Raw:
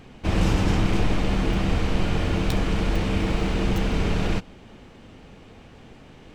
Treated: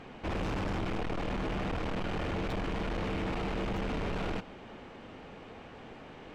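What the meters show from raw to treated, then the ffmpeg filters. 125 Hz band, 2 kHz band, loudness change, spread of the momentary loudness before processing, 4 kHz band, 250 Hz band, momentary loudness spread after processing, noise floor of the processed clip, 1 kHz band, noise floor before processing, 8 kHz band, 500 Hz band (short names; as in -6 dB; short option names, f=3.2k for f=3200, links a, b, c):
-13.0 dB, -7.5 dB, -10.5 dB, 3 LU, -10.5 dB, -10.5 dB, 14 LU, -49 dBFS, -6.0 dB, -48 dBFS, -15.0 dB, -7.0 dB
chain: -filter_complex "[0:a]asoftclip=type=tanh:threshold=-24dB,asplit=2[a][b];[b]highpass=f=720:p=1,volume=14dB,asoftclip=type=tanh:threshold=-24dB[c];[a][c]amix=inputs=2:normalize=0,lowpass=f=1.3k:p=1,volume=-6dB,volume=-2.5dB"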